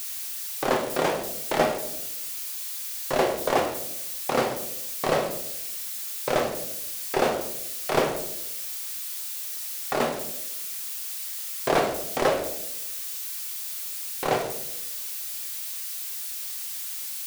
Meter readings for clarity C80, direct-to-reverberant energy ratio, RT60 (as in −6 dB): 11.5 dB, 3.0 dB, 0.80 s